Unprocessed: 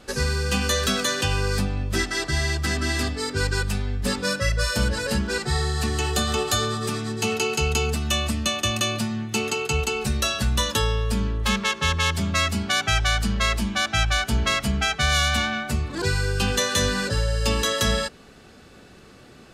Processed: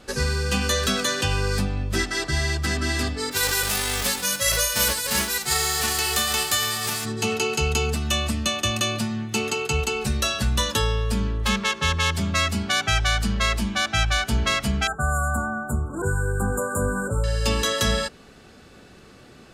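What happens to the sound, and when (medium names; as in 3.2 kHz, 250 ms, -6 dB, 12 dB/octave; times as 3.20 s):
3.31–7.04 s: formants flattened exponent 0.3
8.78–10.93 s: short-mantissa float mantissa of 8-bit
14.87–17.24 s: brick-wall FIR band-stop 1.6–6.9 kHz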